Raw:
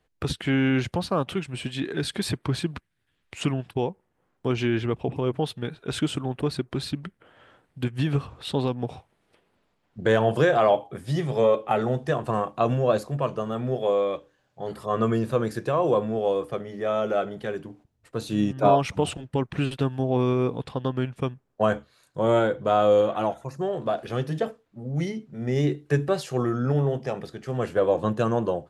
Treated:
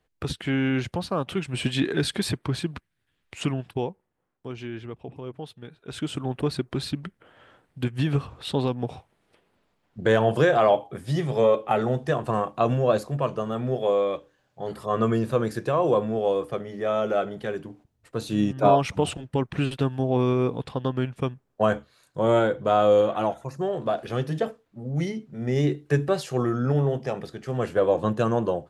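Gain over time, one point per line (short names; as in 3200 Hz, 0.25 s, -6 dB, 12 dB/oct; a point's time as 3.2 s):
1.23 s -2 dB
1.69 s +6.5 dB
2.46 s -1 dB
3.75 s -1 dB
4.5 s -11 dB
5.74 s -11 dB
6.28 s +0.5 dB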